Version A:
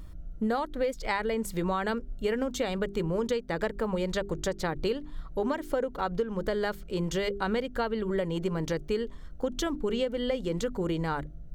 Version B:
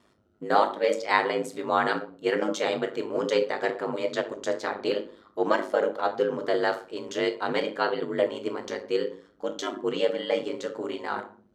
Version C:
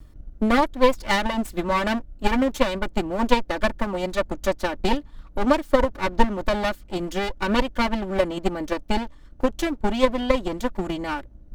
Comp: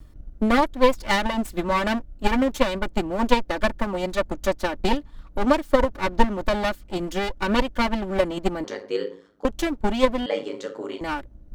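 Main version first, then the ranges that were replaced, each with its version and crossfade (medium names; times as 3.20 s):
C
8.64–9.45 s: from B
10.26–11.01 s: from B
not used: A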